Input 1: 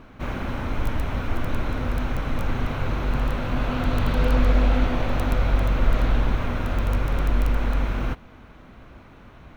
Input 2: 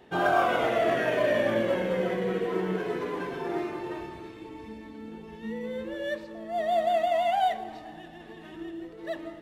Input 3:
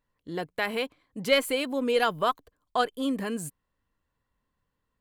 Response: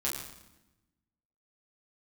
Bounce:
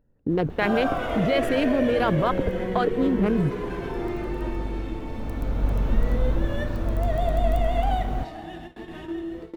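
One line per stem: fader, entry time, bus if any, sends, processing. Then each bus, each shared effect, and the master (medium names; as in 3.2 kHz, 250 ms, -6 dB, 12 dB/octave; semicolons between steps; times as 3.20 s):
4.95 s -12.5 dB -> 5.72 s -2 dB, 0.10 s, no send, peaking EQ 2.4 kHz -11.5 dB 2.5 oct; vibrato with a chosen wave saw up 4.8 Hz, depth 100 cents
+2.5 dB, 0.50 s, send -8 dB, bass shelf 290 Hz +5.5 dB; compression 2:1, threshold -38 dBFS, peak gain reduction 11 dB
-3.5 dB, 0.00 s, no send, local Wiener filter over 41 samples; peaking EQ 11 kHz -15 dB 2.2 oct; level flattener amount 100%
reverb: on, RT60 0.95 s, pre-delay 7 ms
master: gate with hold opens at -28 dBFS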